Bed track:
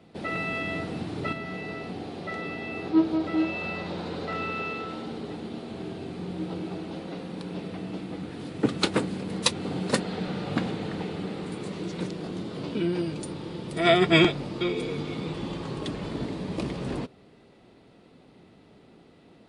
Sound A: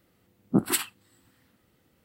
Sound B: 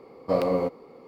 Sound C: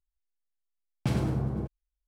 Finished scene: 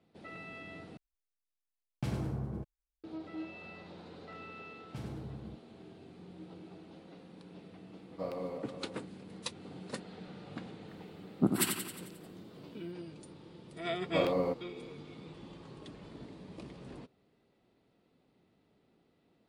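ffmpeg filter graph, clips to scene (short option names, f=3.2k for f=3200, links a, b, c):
-filter_complex "[3:a]asplit=2[a][b];[2:a]asplit=2[c][d];[0:a]volume=-16.5dB[e];[c]asplit=2[f][g];[g]adelay=367.3,volume=-8dB,highshelf=f=4k:g=-8.27[h];[f][h]amix=inputs=2:normalize=0[i];[1:a]aecho=1:1:89|178|267|356|445|534|623:0.473|0.265|0.148|0.0831|0.0465|0.0261|0.0146[j];[e]asplit=2[k][l];[k]atrim=end=0.974[m];[a]atrim=end=2.07,asetpts=PTS-STARTPTS,volume=-7.5dB[n];[l]atrim=start=3.036[o];[b]atrim=end=2.07,asetpts=PTS-STARTPTS,volume=-15dB,afade=t=in:d=0.004:c=hsin,afade=t=out:st=2.066:d=0.004:c=hsin,adelay=171549S[p];[i]atrim=end=1.07,asetpts=PTS-STARTPTS,volume=-15dB,afade=t=in:d=0.004:c=hsin,afade=t=out:st=1.066:d=0.004:c=hsin,adelay=7900[q];[j]atrim=end=2.04,asetpts=PTS-STARTPTS,volume=-5.5dB,afade=t=in:d=0.004:c=hsin,afade=t=out:st=2.036:d=0.004:c=hsin,adelay=10880[r];[d]atrim=end=1.07,asetpts=PTS-STARTPTS,volume=-6.5dB,afade=t=in:d=0.004:c=hsin,afade=t=out:st=1.066:d=0.004:c=hsin,adelay=13850[s];[m][n]acrossfade=d=0.004:c1=hsin:c2=hsin[t];[t][o]acrossfade=d=0.004:c1=hsin:c2=hsin[u];[u][p][q][r][s]amix=inputs=5:normalize=0"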